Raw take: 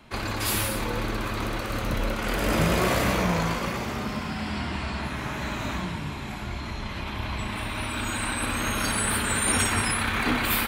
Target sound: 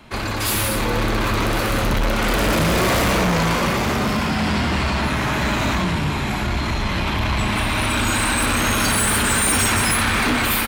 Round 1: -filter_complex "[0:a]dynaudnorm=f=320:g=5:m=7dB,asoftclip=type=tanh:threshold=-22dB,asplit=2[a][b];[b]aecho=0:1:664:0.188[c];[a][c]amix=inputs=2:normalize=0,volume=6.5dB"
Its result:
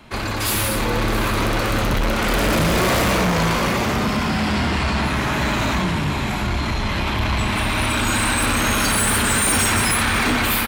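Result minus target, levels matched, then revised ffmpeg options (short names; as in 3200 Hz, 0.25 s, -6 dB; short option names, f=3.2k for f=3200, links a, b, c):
echo 0.428 s early
-filter_complex "[0:a]dynaudnorm=f=320:g=5:m=7dB,asoftclip=type=tanh:threshold=-22dB,asplit=2[a][b];[b]aecho=0:1:1092:0.188[c];[a][c]amix=inputs=2:normalize=0,volume=6.5dB"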